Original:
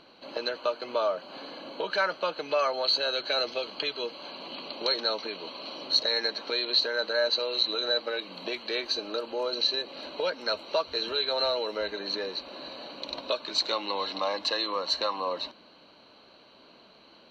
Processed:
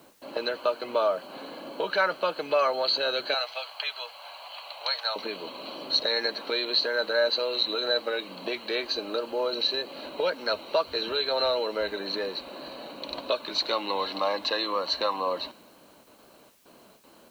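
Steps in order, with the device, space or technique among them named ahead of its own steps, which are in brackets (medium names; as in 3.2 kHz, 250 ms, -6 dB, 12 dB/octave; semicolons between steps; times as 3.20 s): gate with hold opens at -45 dBFS; 3.34–5.16 s: elliptic band-pass 700–7000 Hz, stop band 40 dB; distance through air 110 m; plain cassette with noise reduction switched in (tape noise reduction on one side only decoder only; wow and flutter 20 cents; white noise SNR 33 dB); trim +3 dB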